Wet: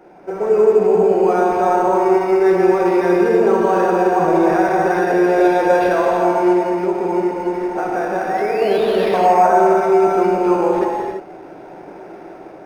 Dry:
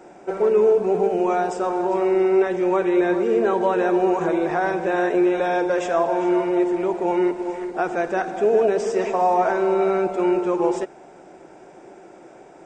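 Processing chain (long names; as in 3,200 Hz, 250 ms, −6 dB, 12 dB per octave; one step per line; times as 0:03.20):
automatic gain control gain up to 6 dB
brickwall limiter −9 dBFS, peak gain reduction 5.5 dB
0:06.52–0:08.62: downward compressor, threshold −18 dBFS, peak gain reduction 5.5 dB
0:08.29–0:09.20: sound drawn into the spectrogram rise 1,800–6,100 Hz −34 dBFS
convolution reverb, pre-delay 3 ms, DRR −2.5 dB
linearly interpolated sample-rate reduction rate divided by 6×
level −1 dB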